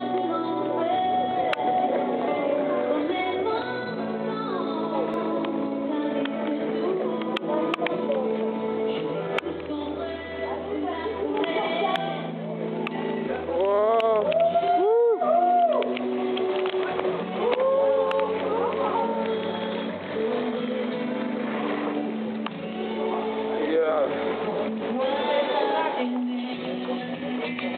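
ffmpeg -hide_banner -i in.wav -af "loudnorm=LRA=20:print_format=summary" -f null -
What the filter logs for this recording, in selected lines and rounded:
Input Integrated:    -25.9 LUFS
Input True Peak:      -9.1 dBTP
Input LRA:             5.6 LU
Input Threshold:     -35.9 LUFS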